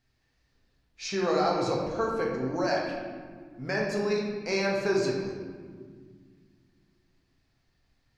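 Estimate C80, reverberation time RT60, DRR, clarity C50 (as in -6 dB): 4.0 dB, 1.9 s, -2.5 dB, 1.5 dB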